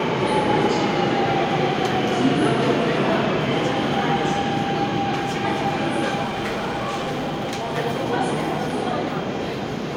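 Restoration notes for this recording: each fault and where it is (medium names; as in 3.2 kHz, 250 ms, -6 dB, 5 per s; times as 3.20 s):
6.23–7.78 s: clipped -22 dBFS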